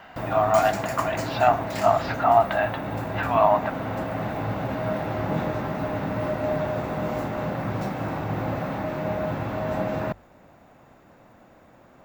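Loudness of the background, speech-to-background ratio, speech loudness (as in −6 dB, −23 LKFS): −29.0 LKFS, 6.0 dB, −23.0 LKFS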